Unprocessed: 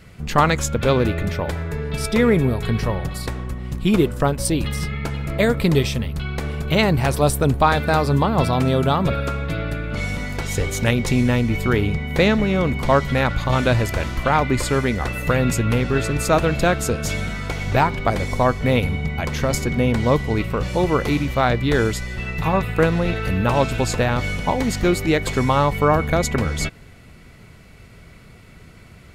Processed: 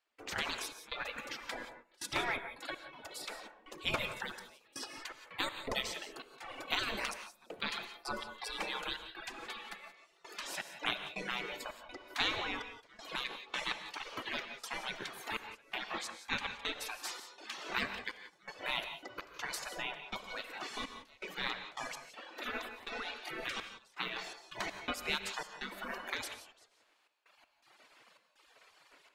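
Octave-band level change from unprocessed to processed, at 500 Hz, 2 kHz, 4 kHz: -26.0, -13.5, -9.0 dB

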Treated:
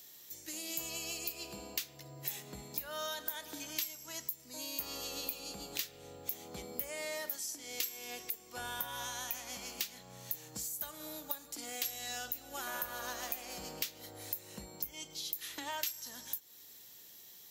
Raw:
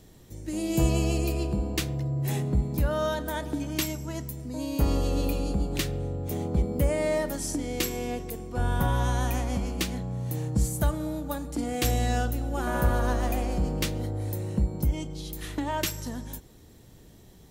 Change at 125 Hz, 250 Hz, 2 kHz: -29.5, -22.0, -7.5 dB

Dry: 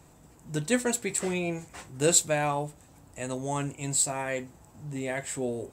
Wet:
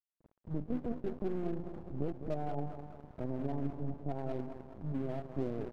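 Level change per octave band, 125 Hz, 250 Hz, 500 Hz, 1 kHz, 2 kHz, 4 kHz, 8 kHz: -4.0 dB, -5.0 dB, -9.0 dB, -11.0 dB, -23.5 dB, under -25 dB, under -40 dB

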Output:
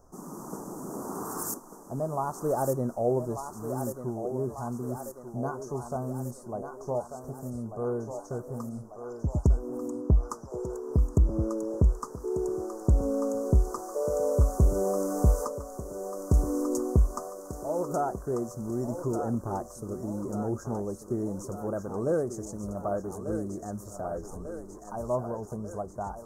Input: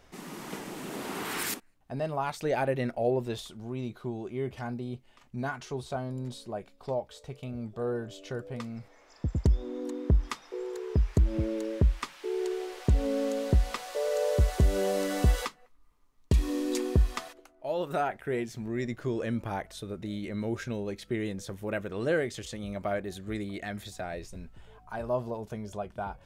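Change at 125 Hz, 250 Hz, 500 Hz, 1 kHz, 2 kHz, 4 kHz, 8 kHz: +1.5 dB, +1.5 dB, +1.5 dB, +1.5 dB, -13.0 dB, under -10 dB, +2.0 dB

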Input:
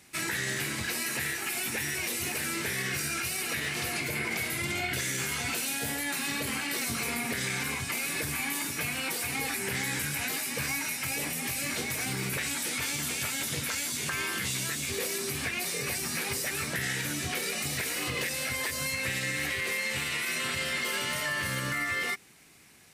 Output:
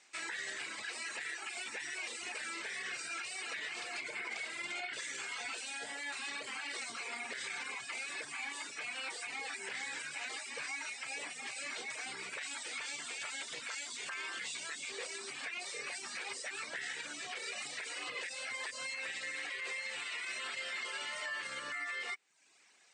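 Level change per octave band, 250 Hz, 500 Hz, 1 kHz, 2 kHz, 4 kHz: -20.0, -12.0, -8.0, -8.0, -8.5 dB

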